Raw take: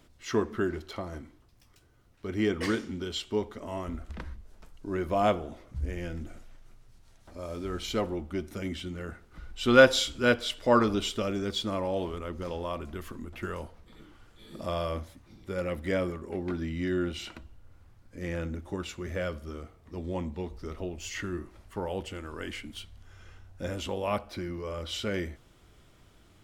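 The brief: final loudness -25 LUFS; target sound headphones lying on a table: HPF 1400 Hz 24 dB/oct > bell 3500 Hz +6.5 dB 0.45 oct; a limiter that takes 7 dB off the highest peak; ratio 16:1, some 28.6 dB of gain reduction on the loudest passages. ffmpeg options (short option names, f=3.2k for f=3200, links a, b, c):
-af "acompressor=threshold=-40dB:ratio=16,alimiter=level_in=11.5dB:limit=-24dB:level=0:latency=1,volume=-11.5dB,highpass=f=1.4k:w=0.5412,highpass=f=1.4k:w=1.3066,equalizer=f=3.5k:t=o:w=0.45:g=6.5,volume=24.5dB"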